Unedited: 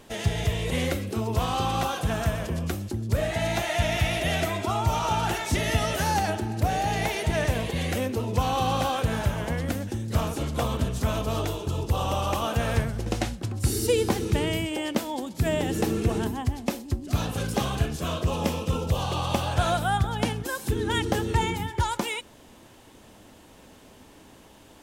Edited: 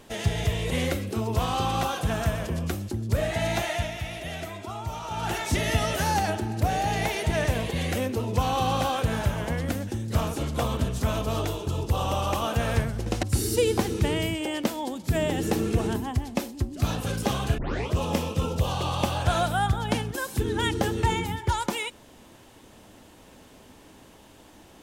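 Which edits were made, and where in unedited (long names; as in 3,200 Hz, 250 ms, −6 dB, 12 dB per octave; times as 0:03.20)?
0:03.64–0:05.39: duck −9 dB, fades 0.29 s
0:13.23–0:13.54: remove
0:17.89: tape start 0.34 s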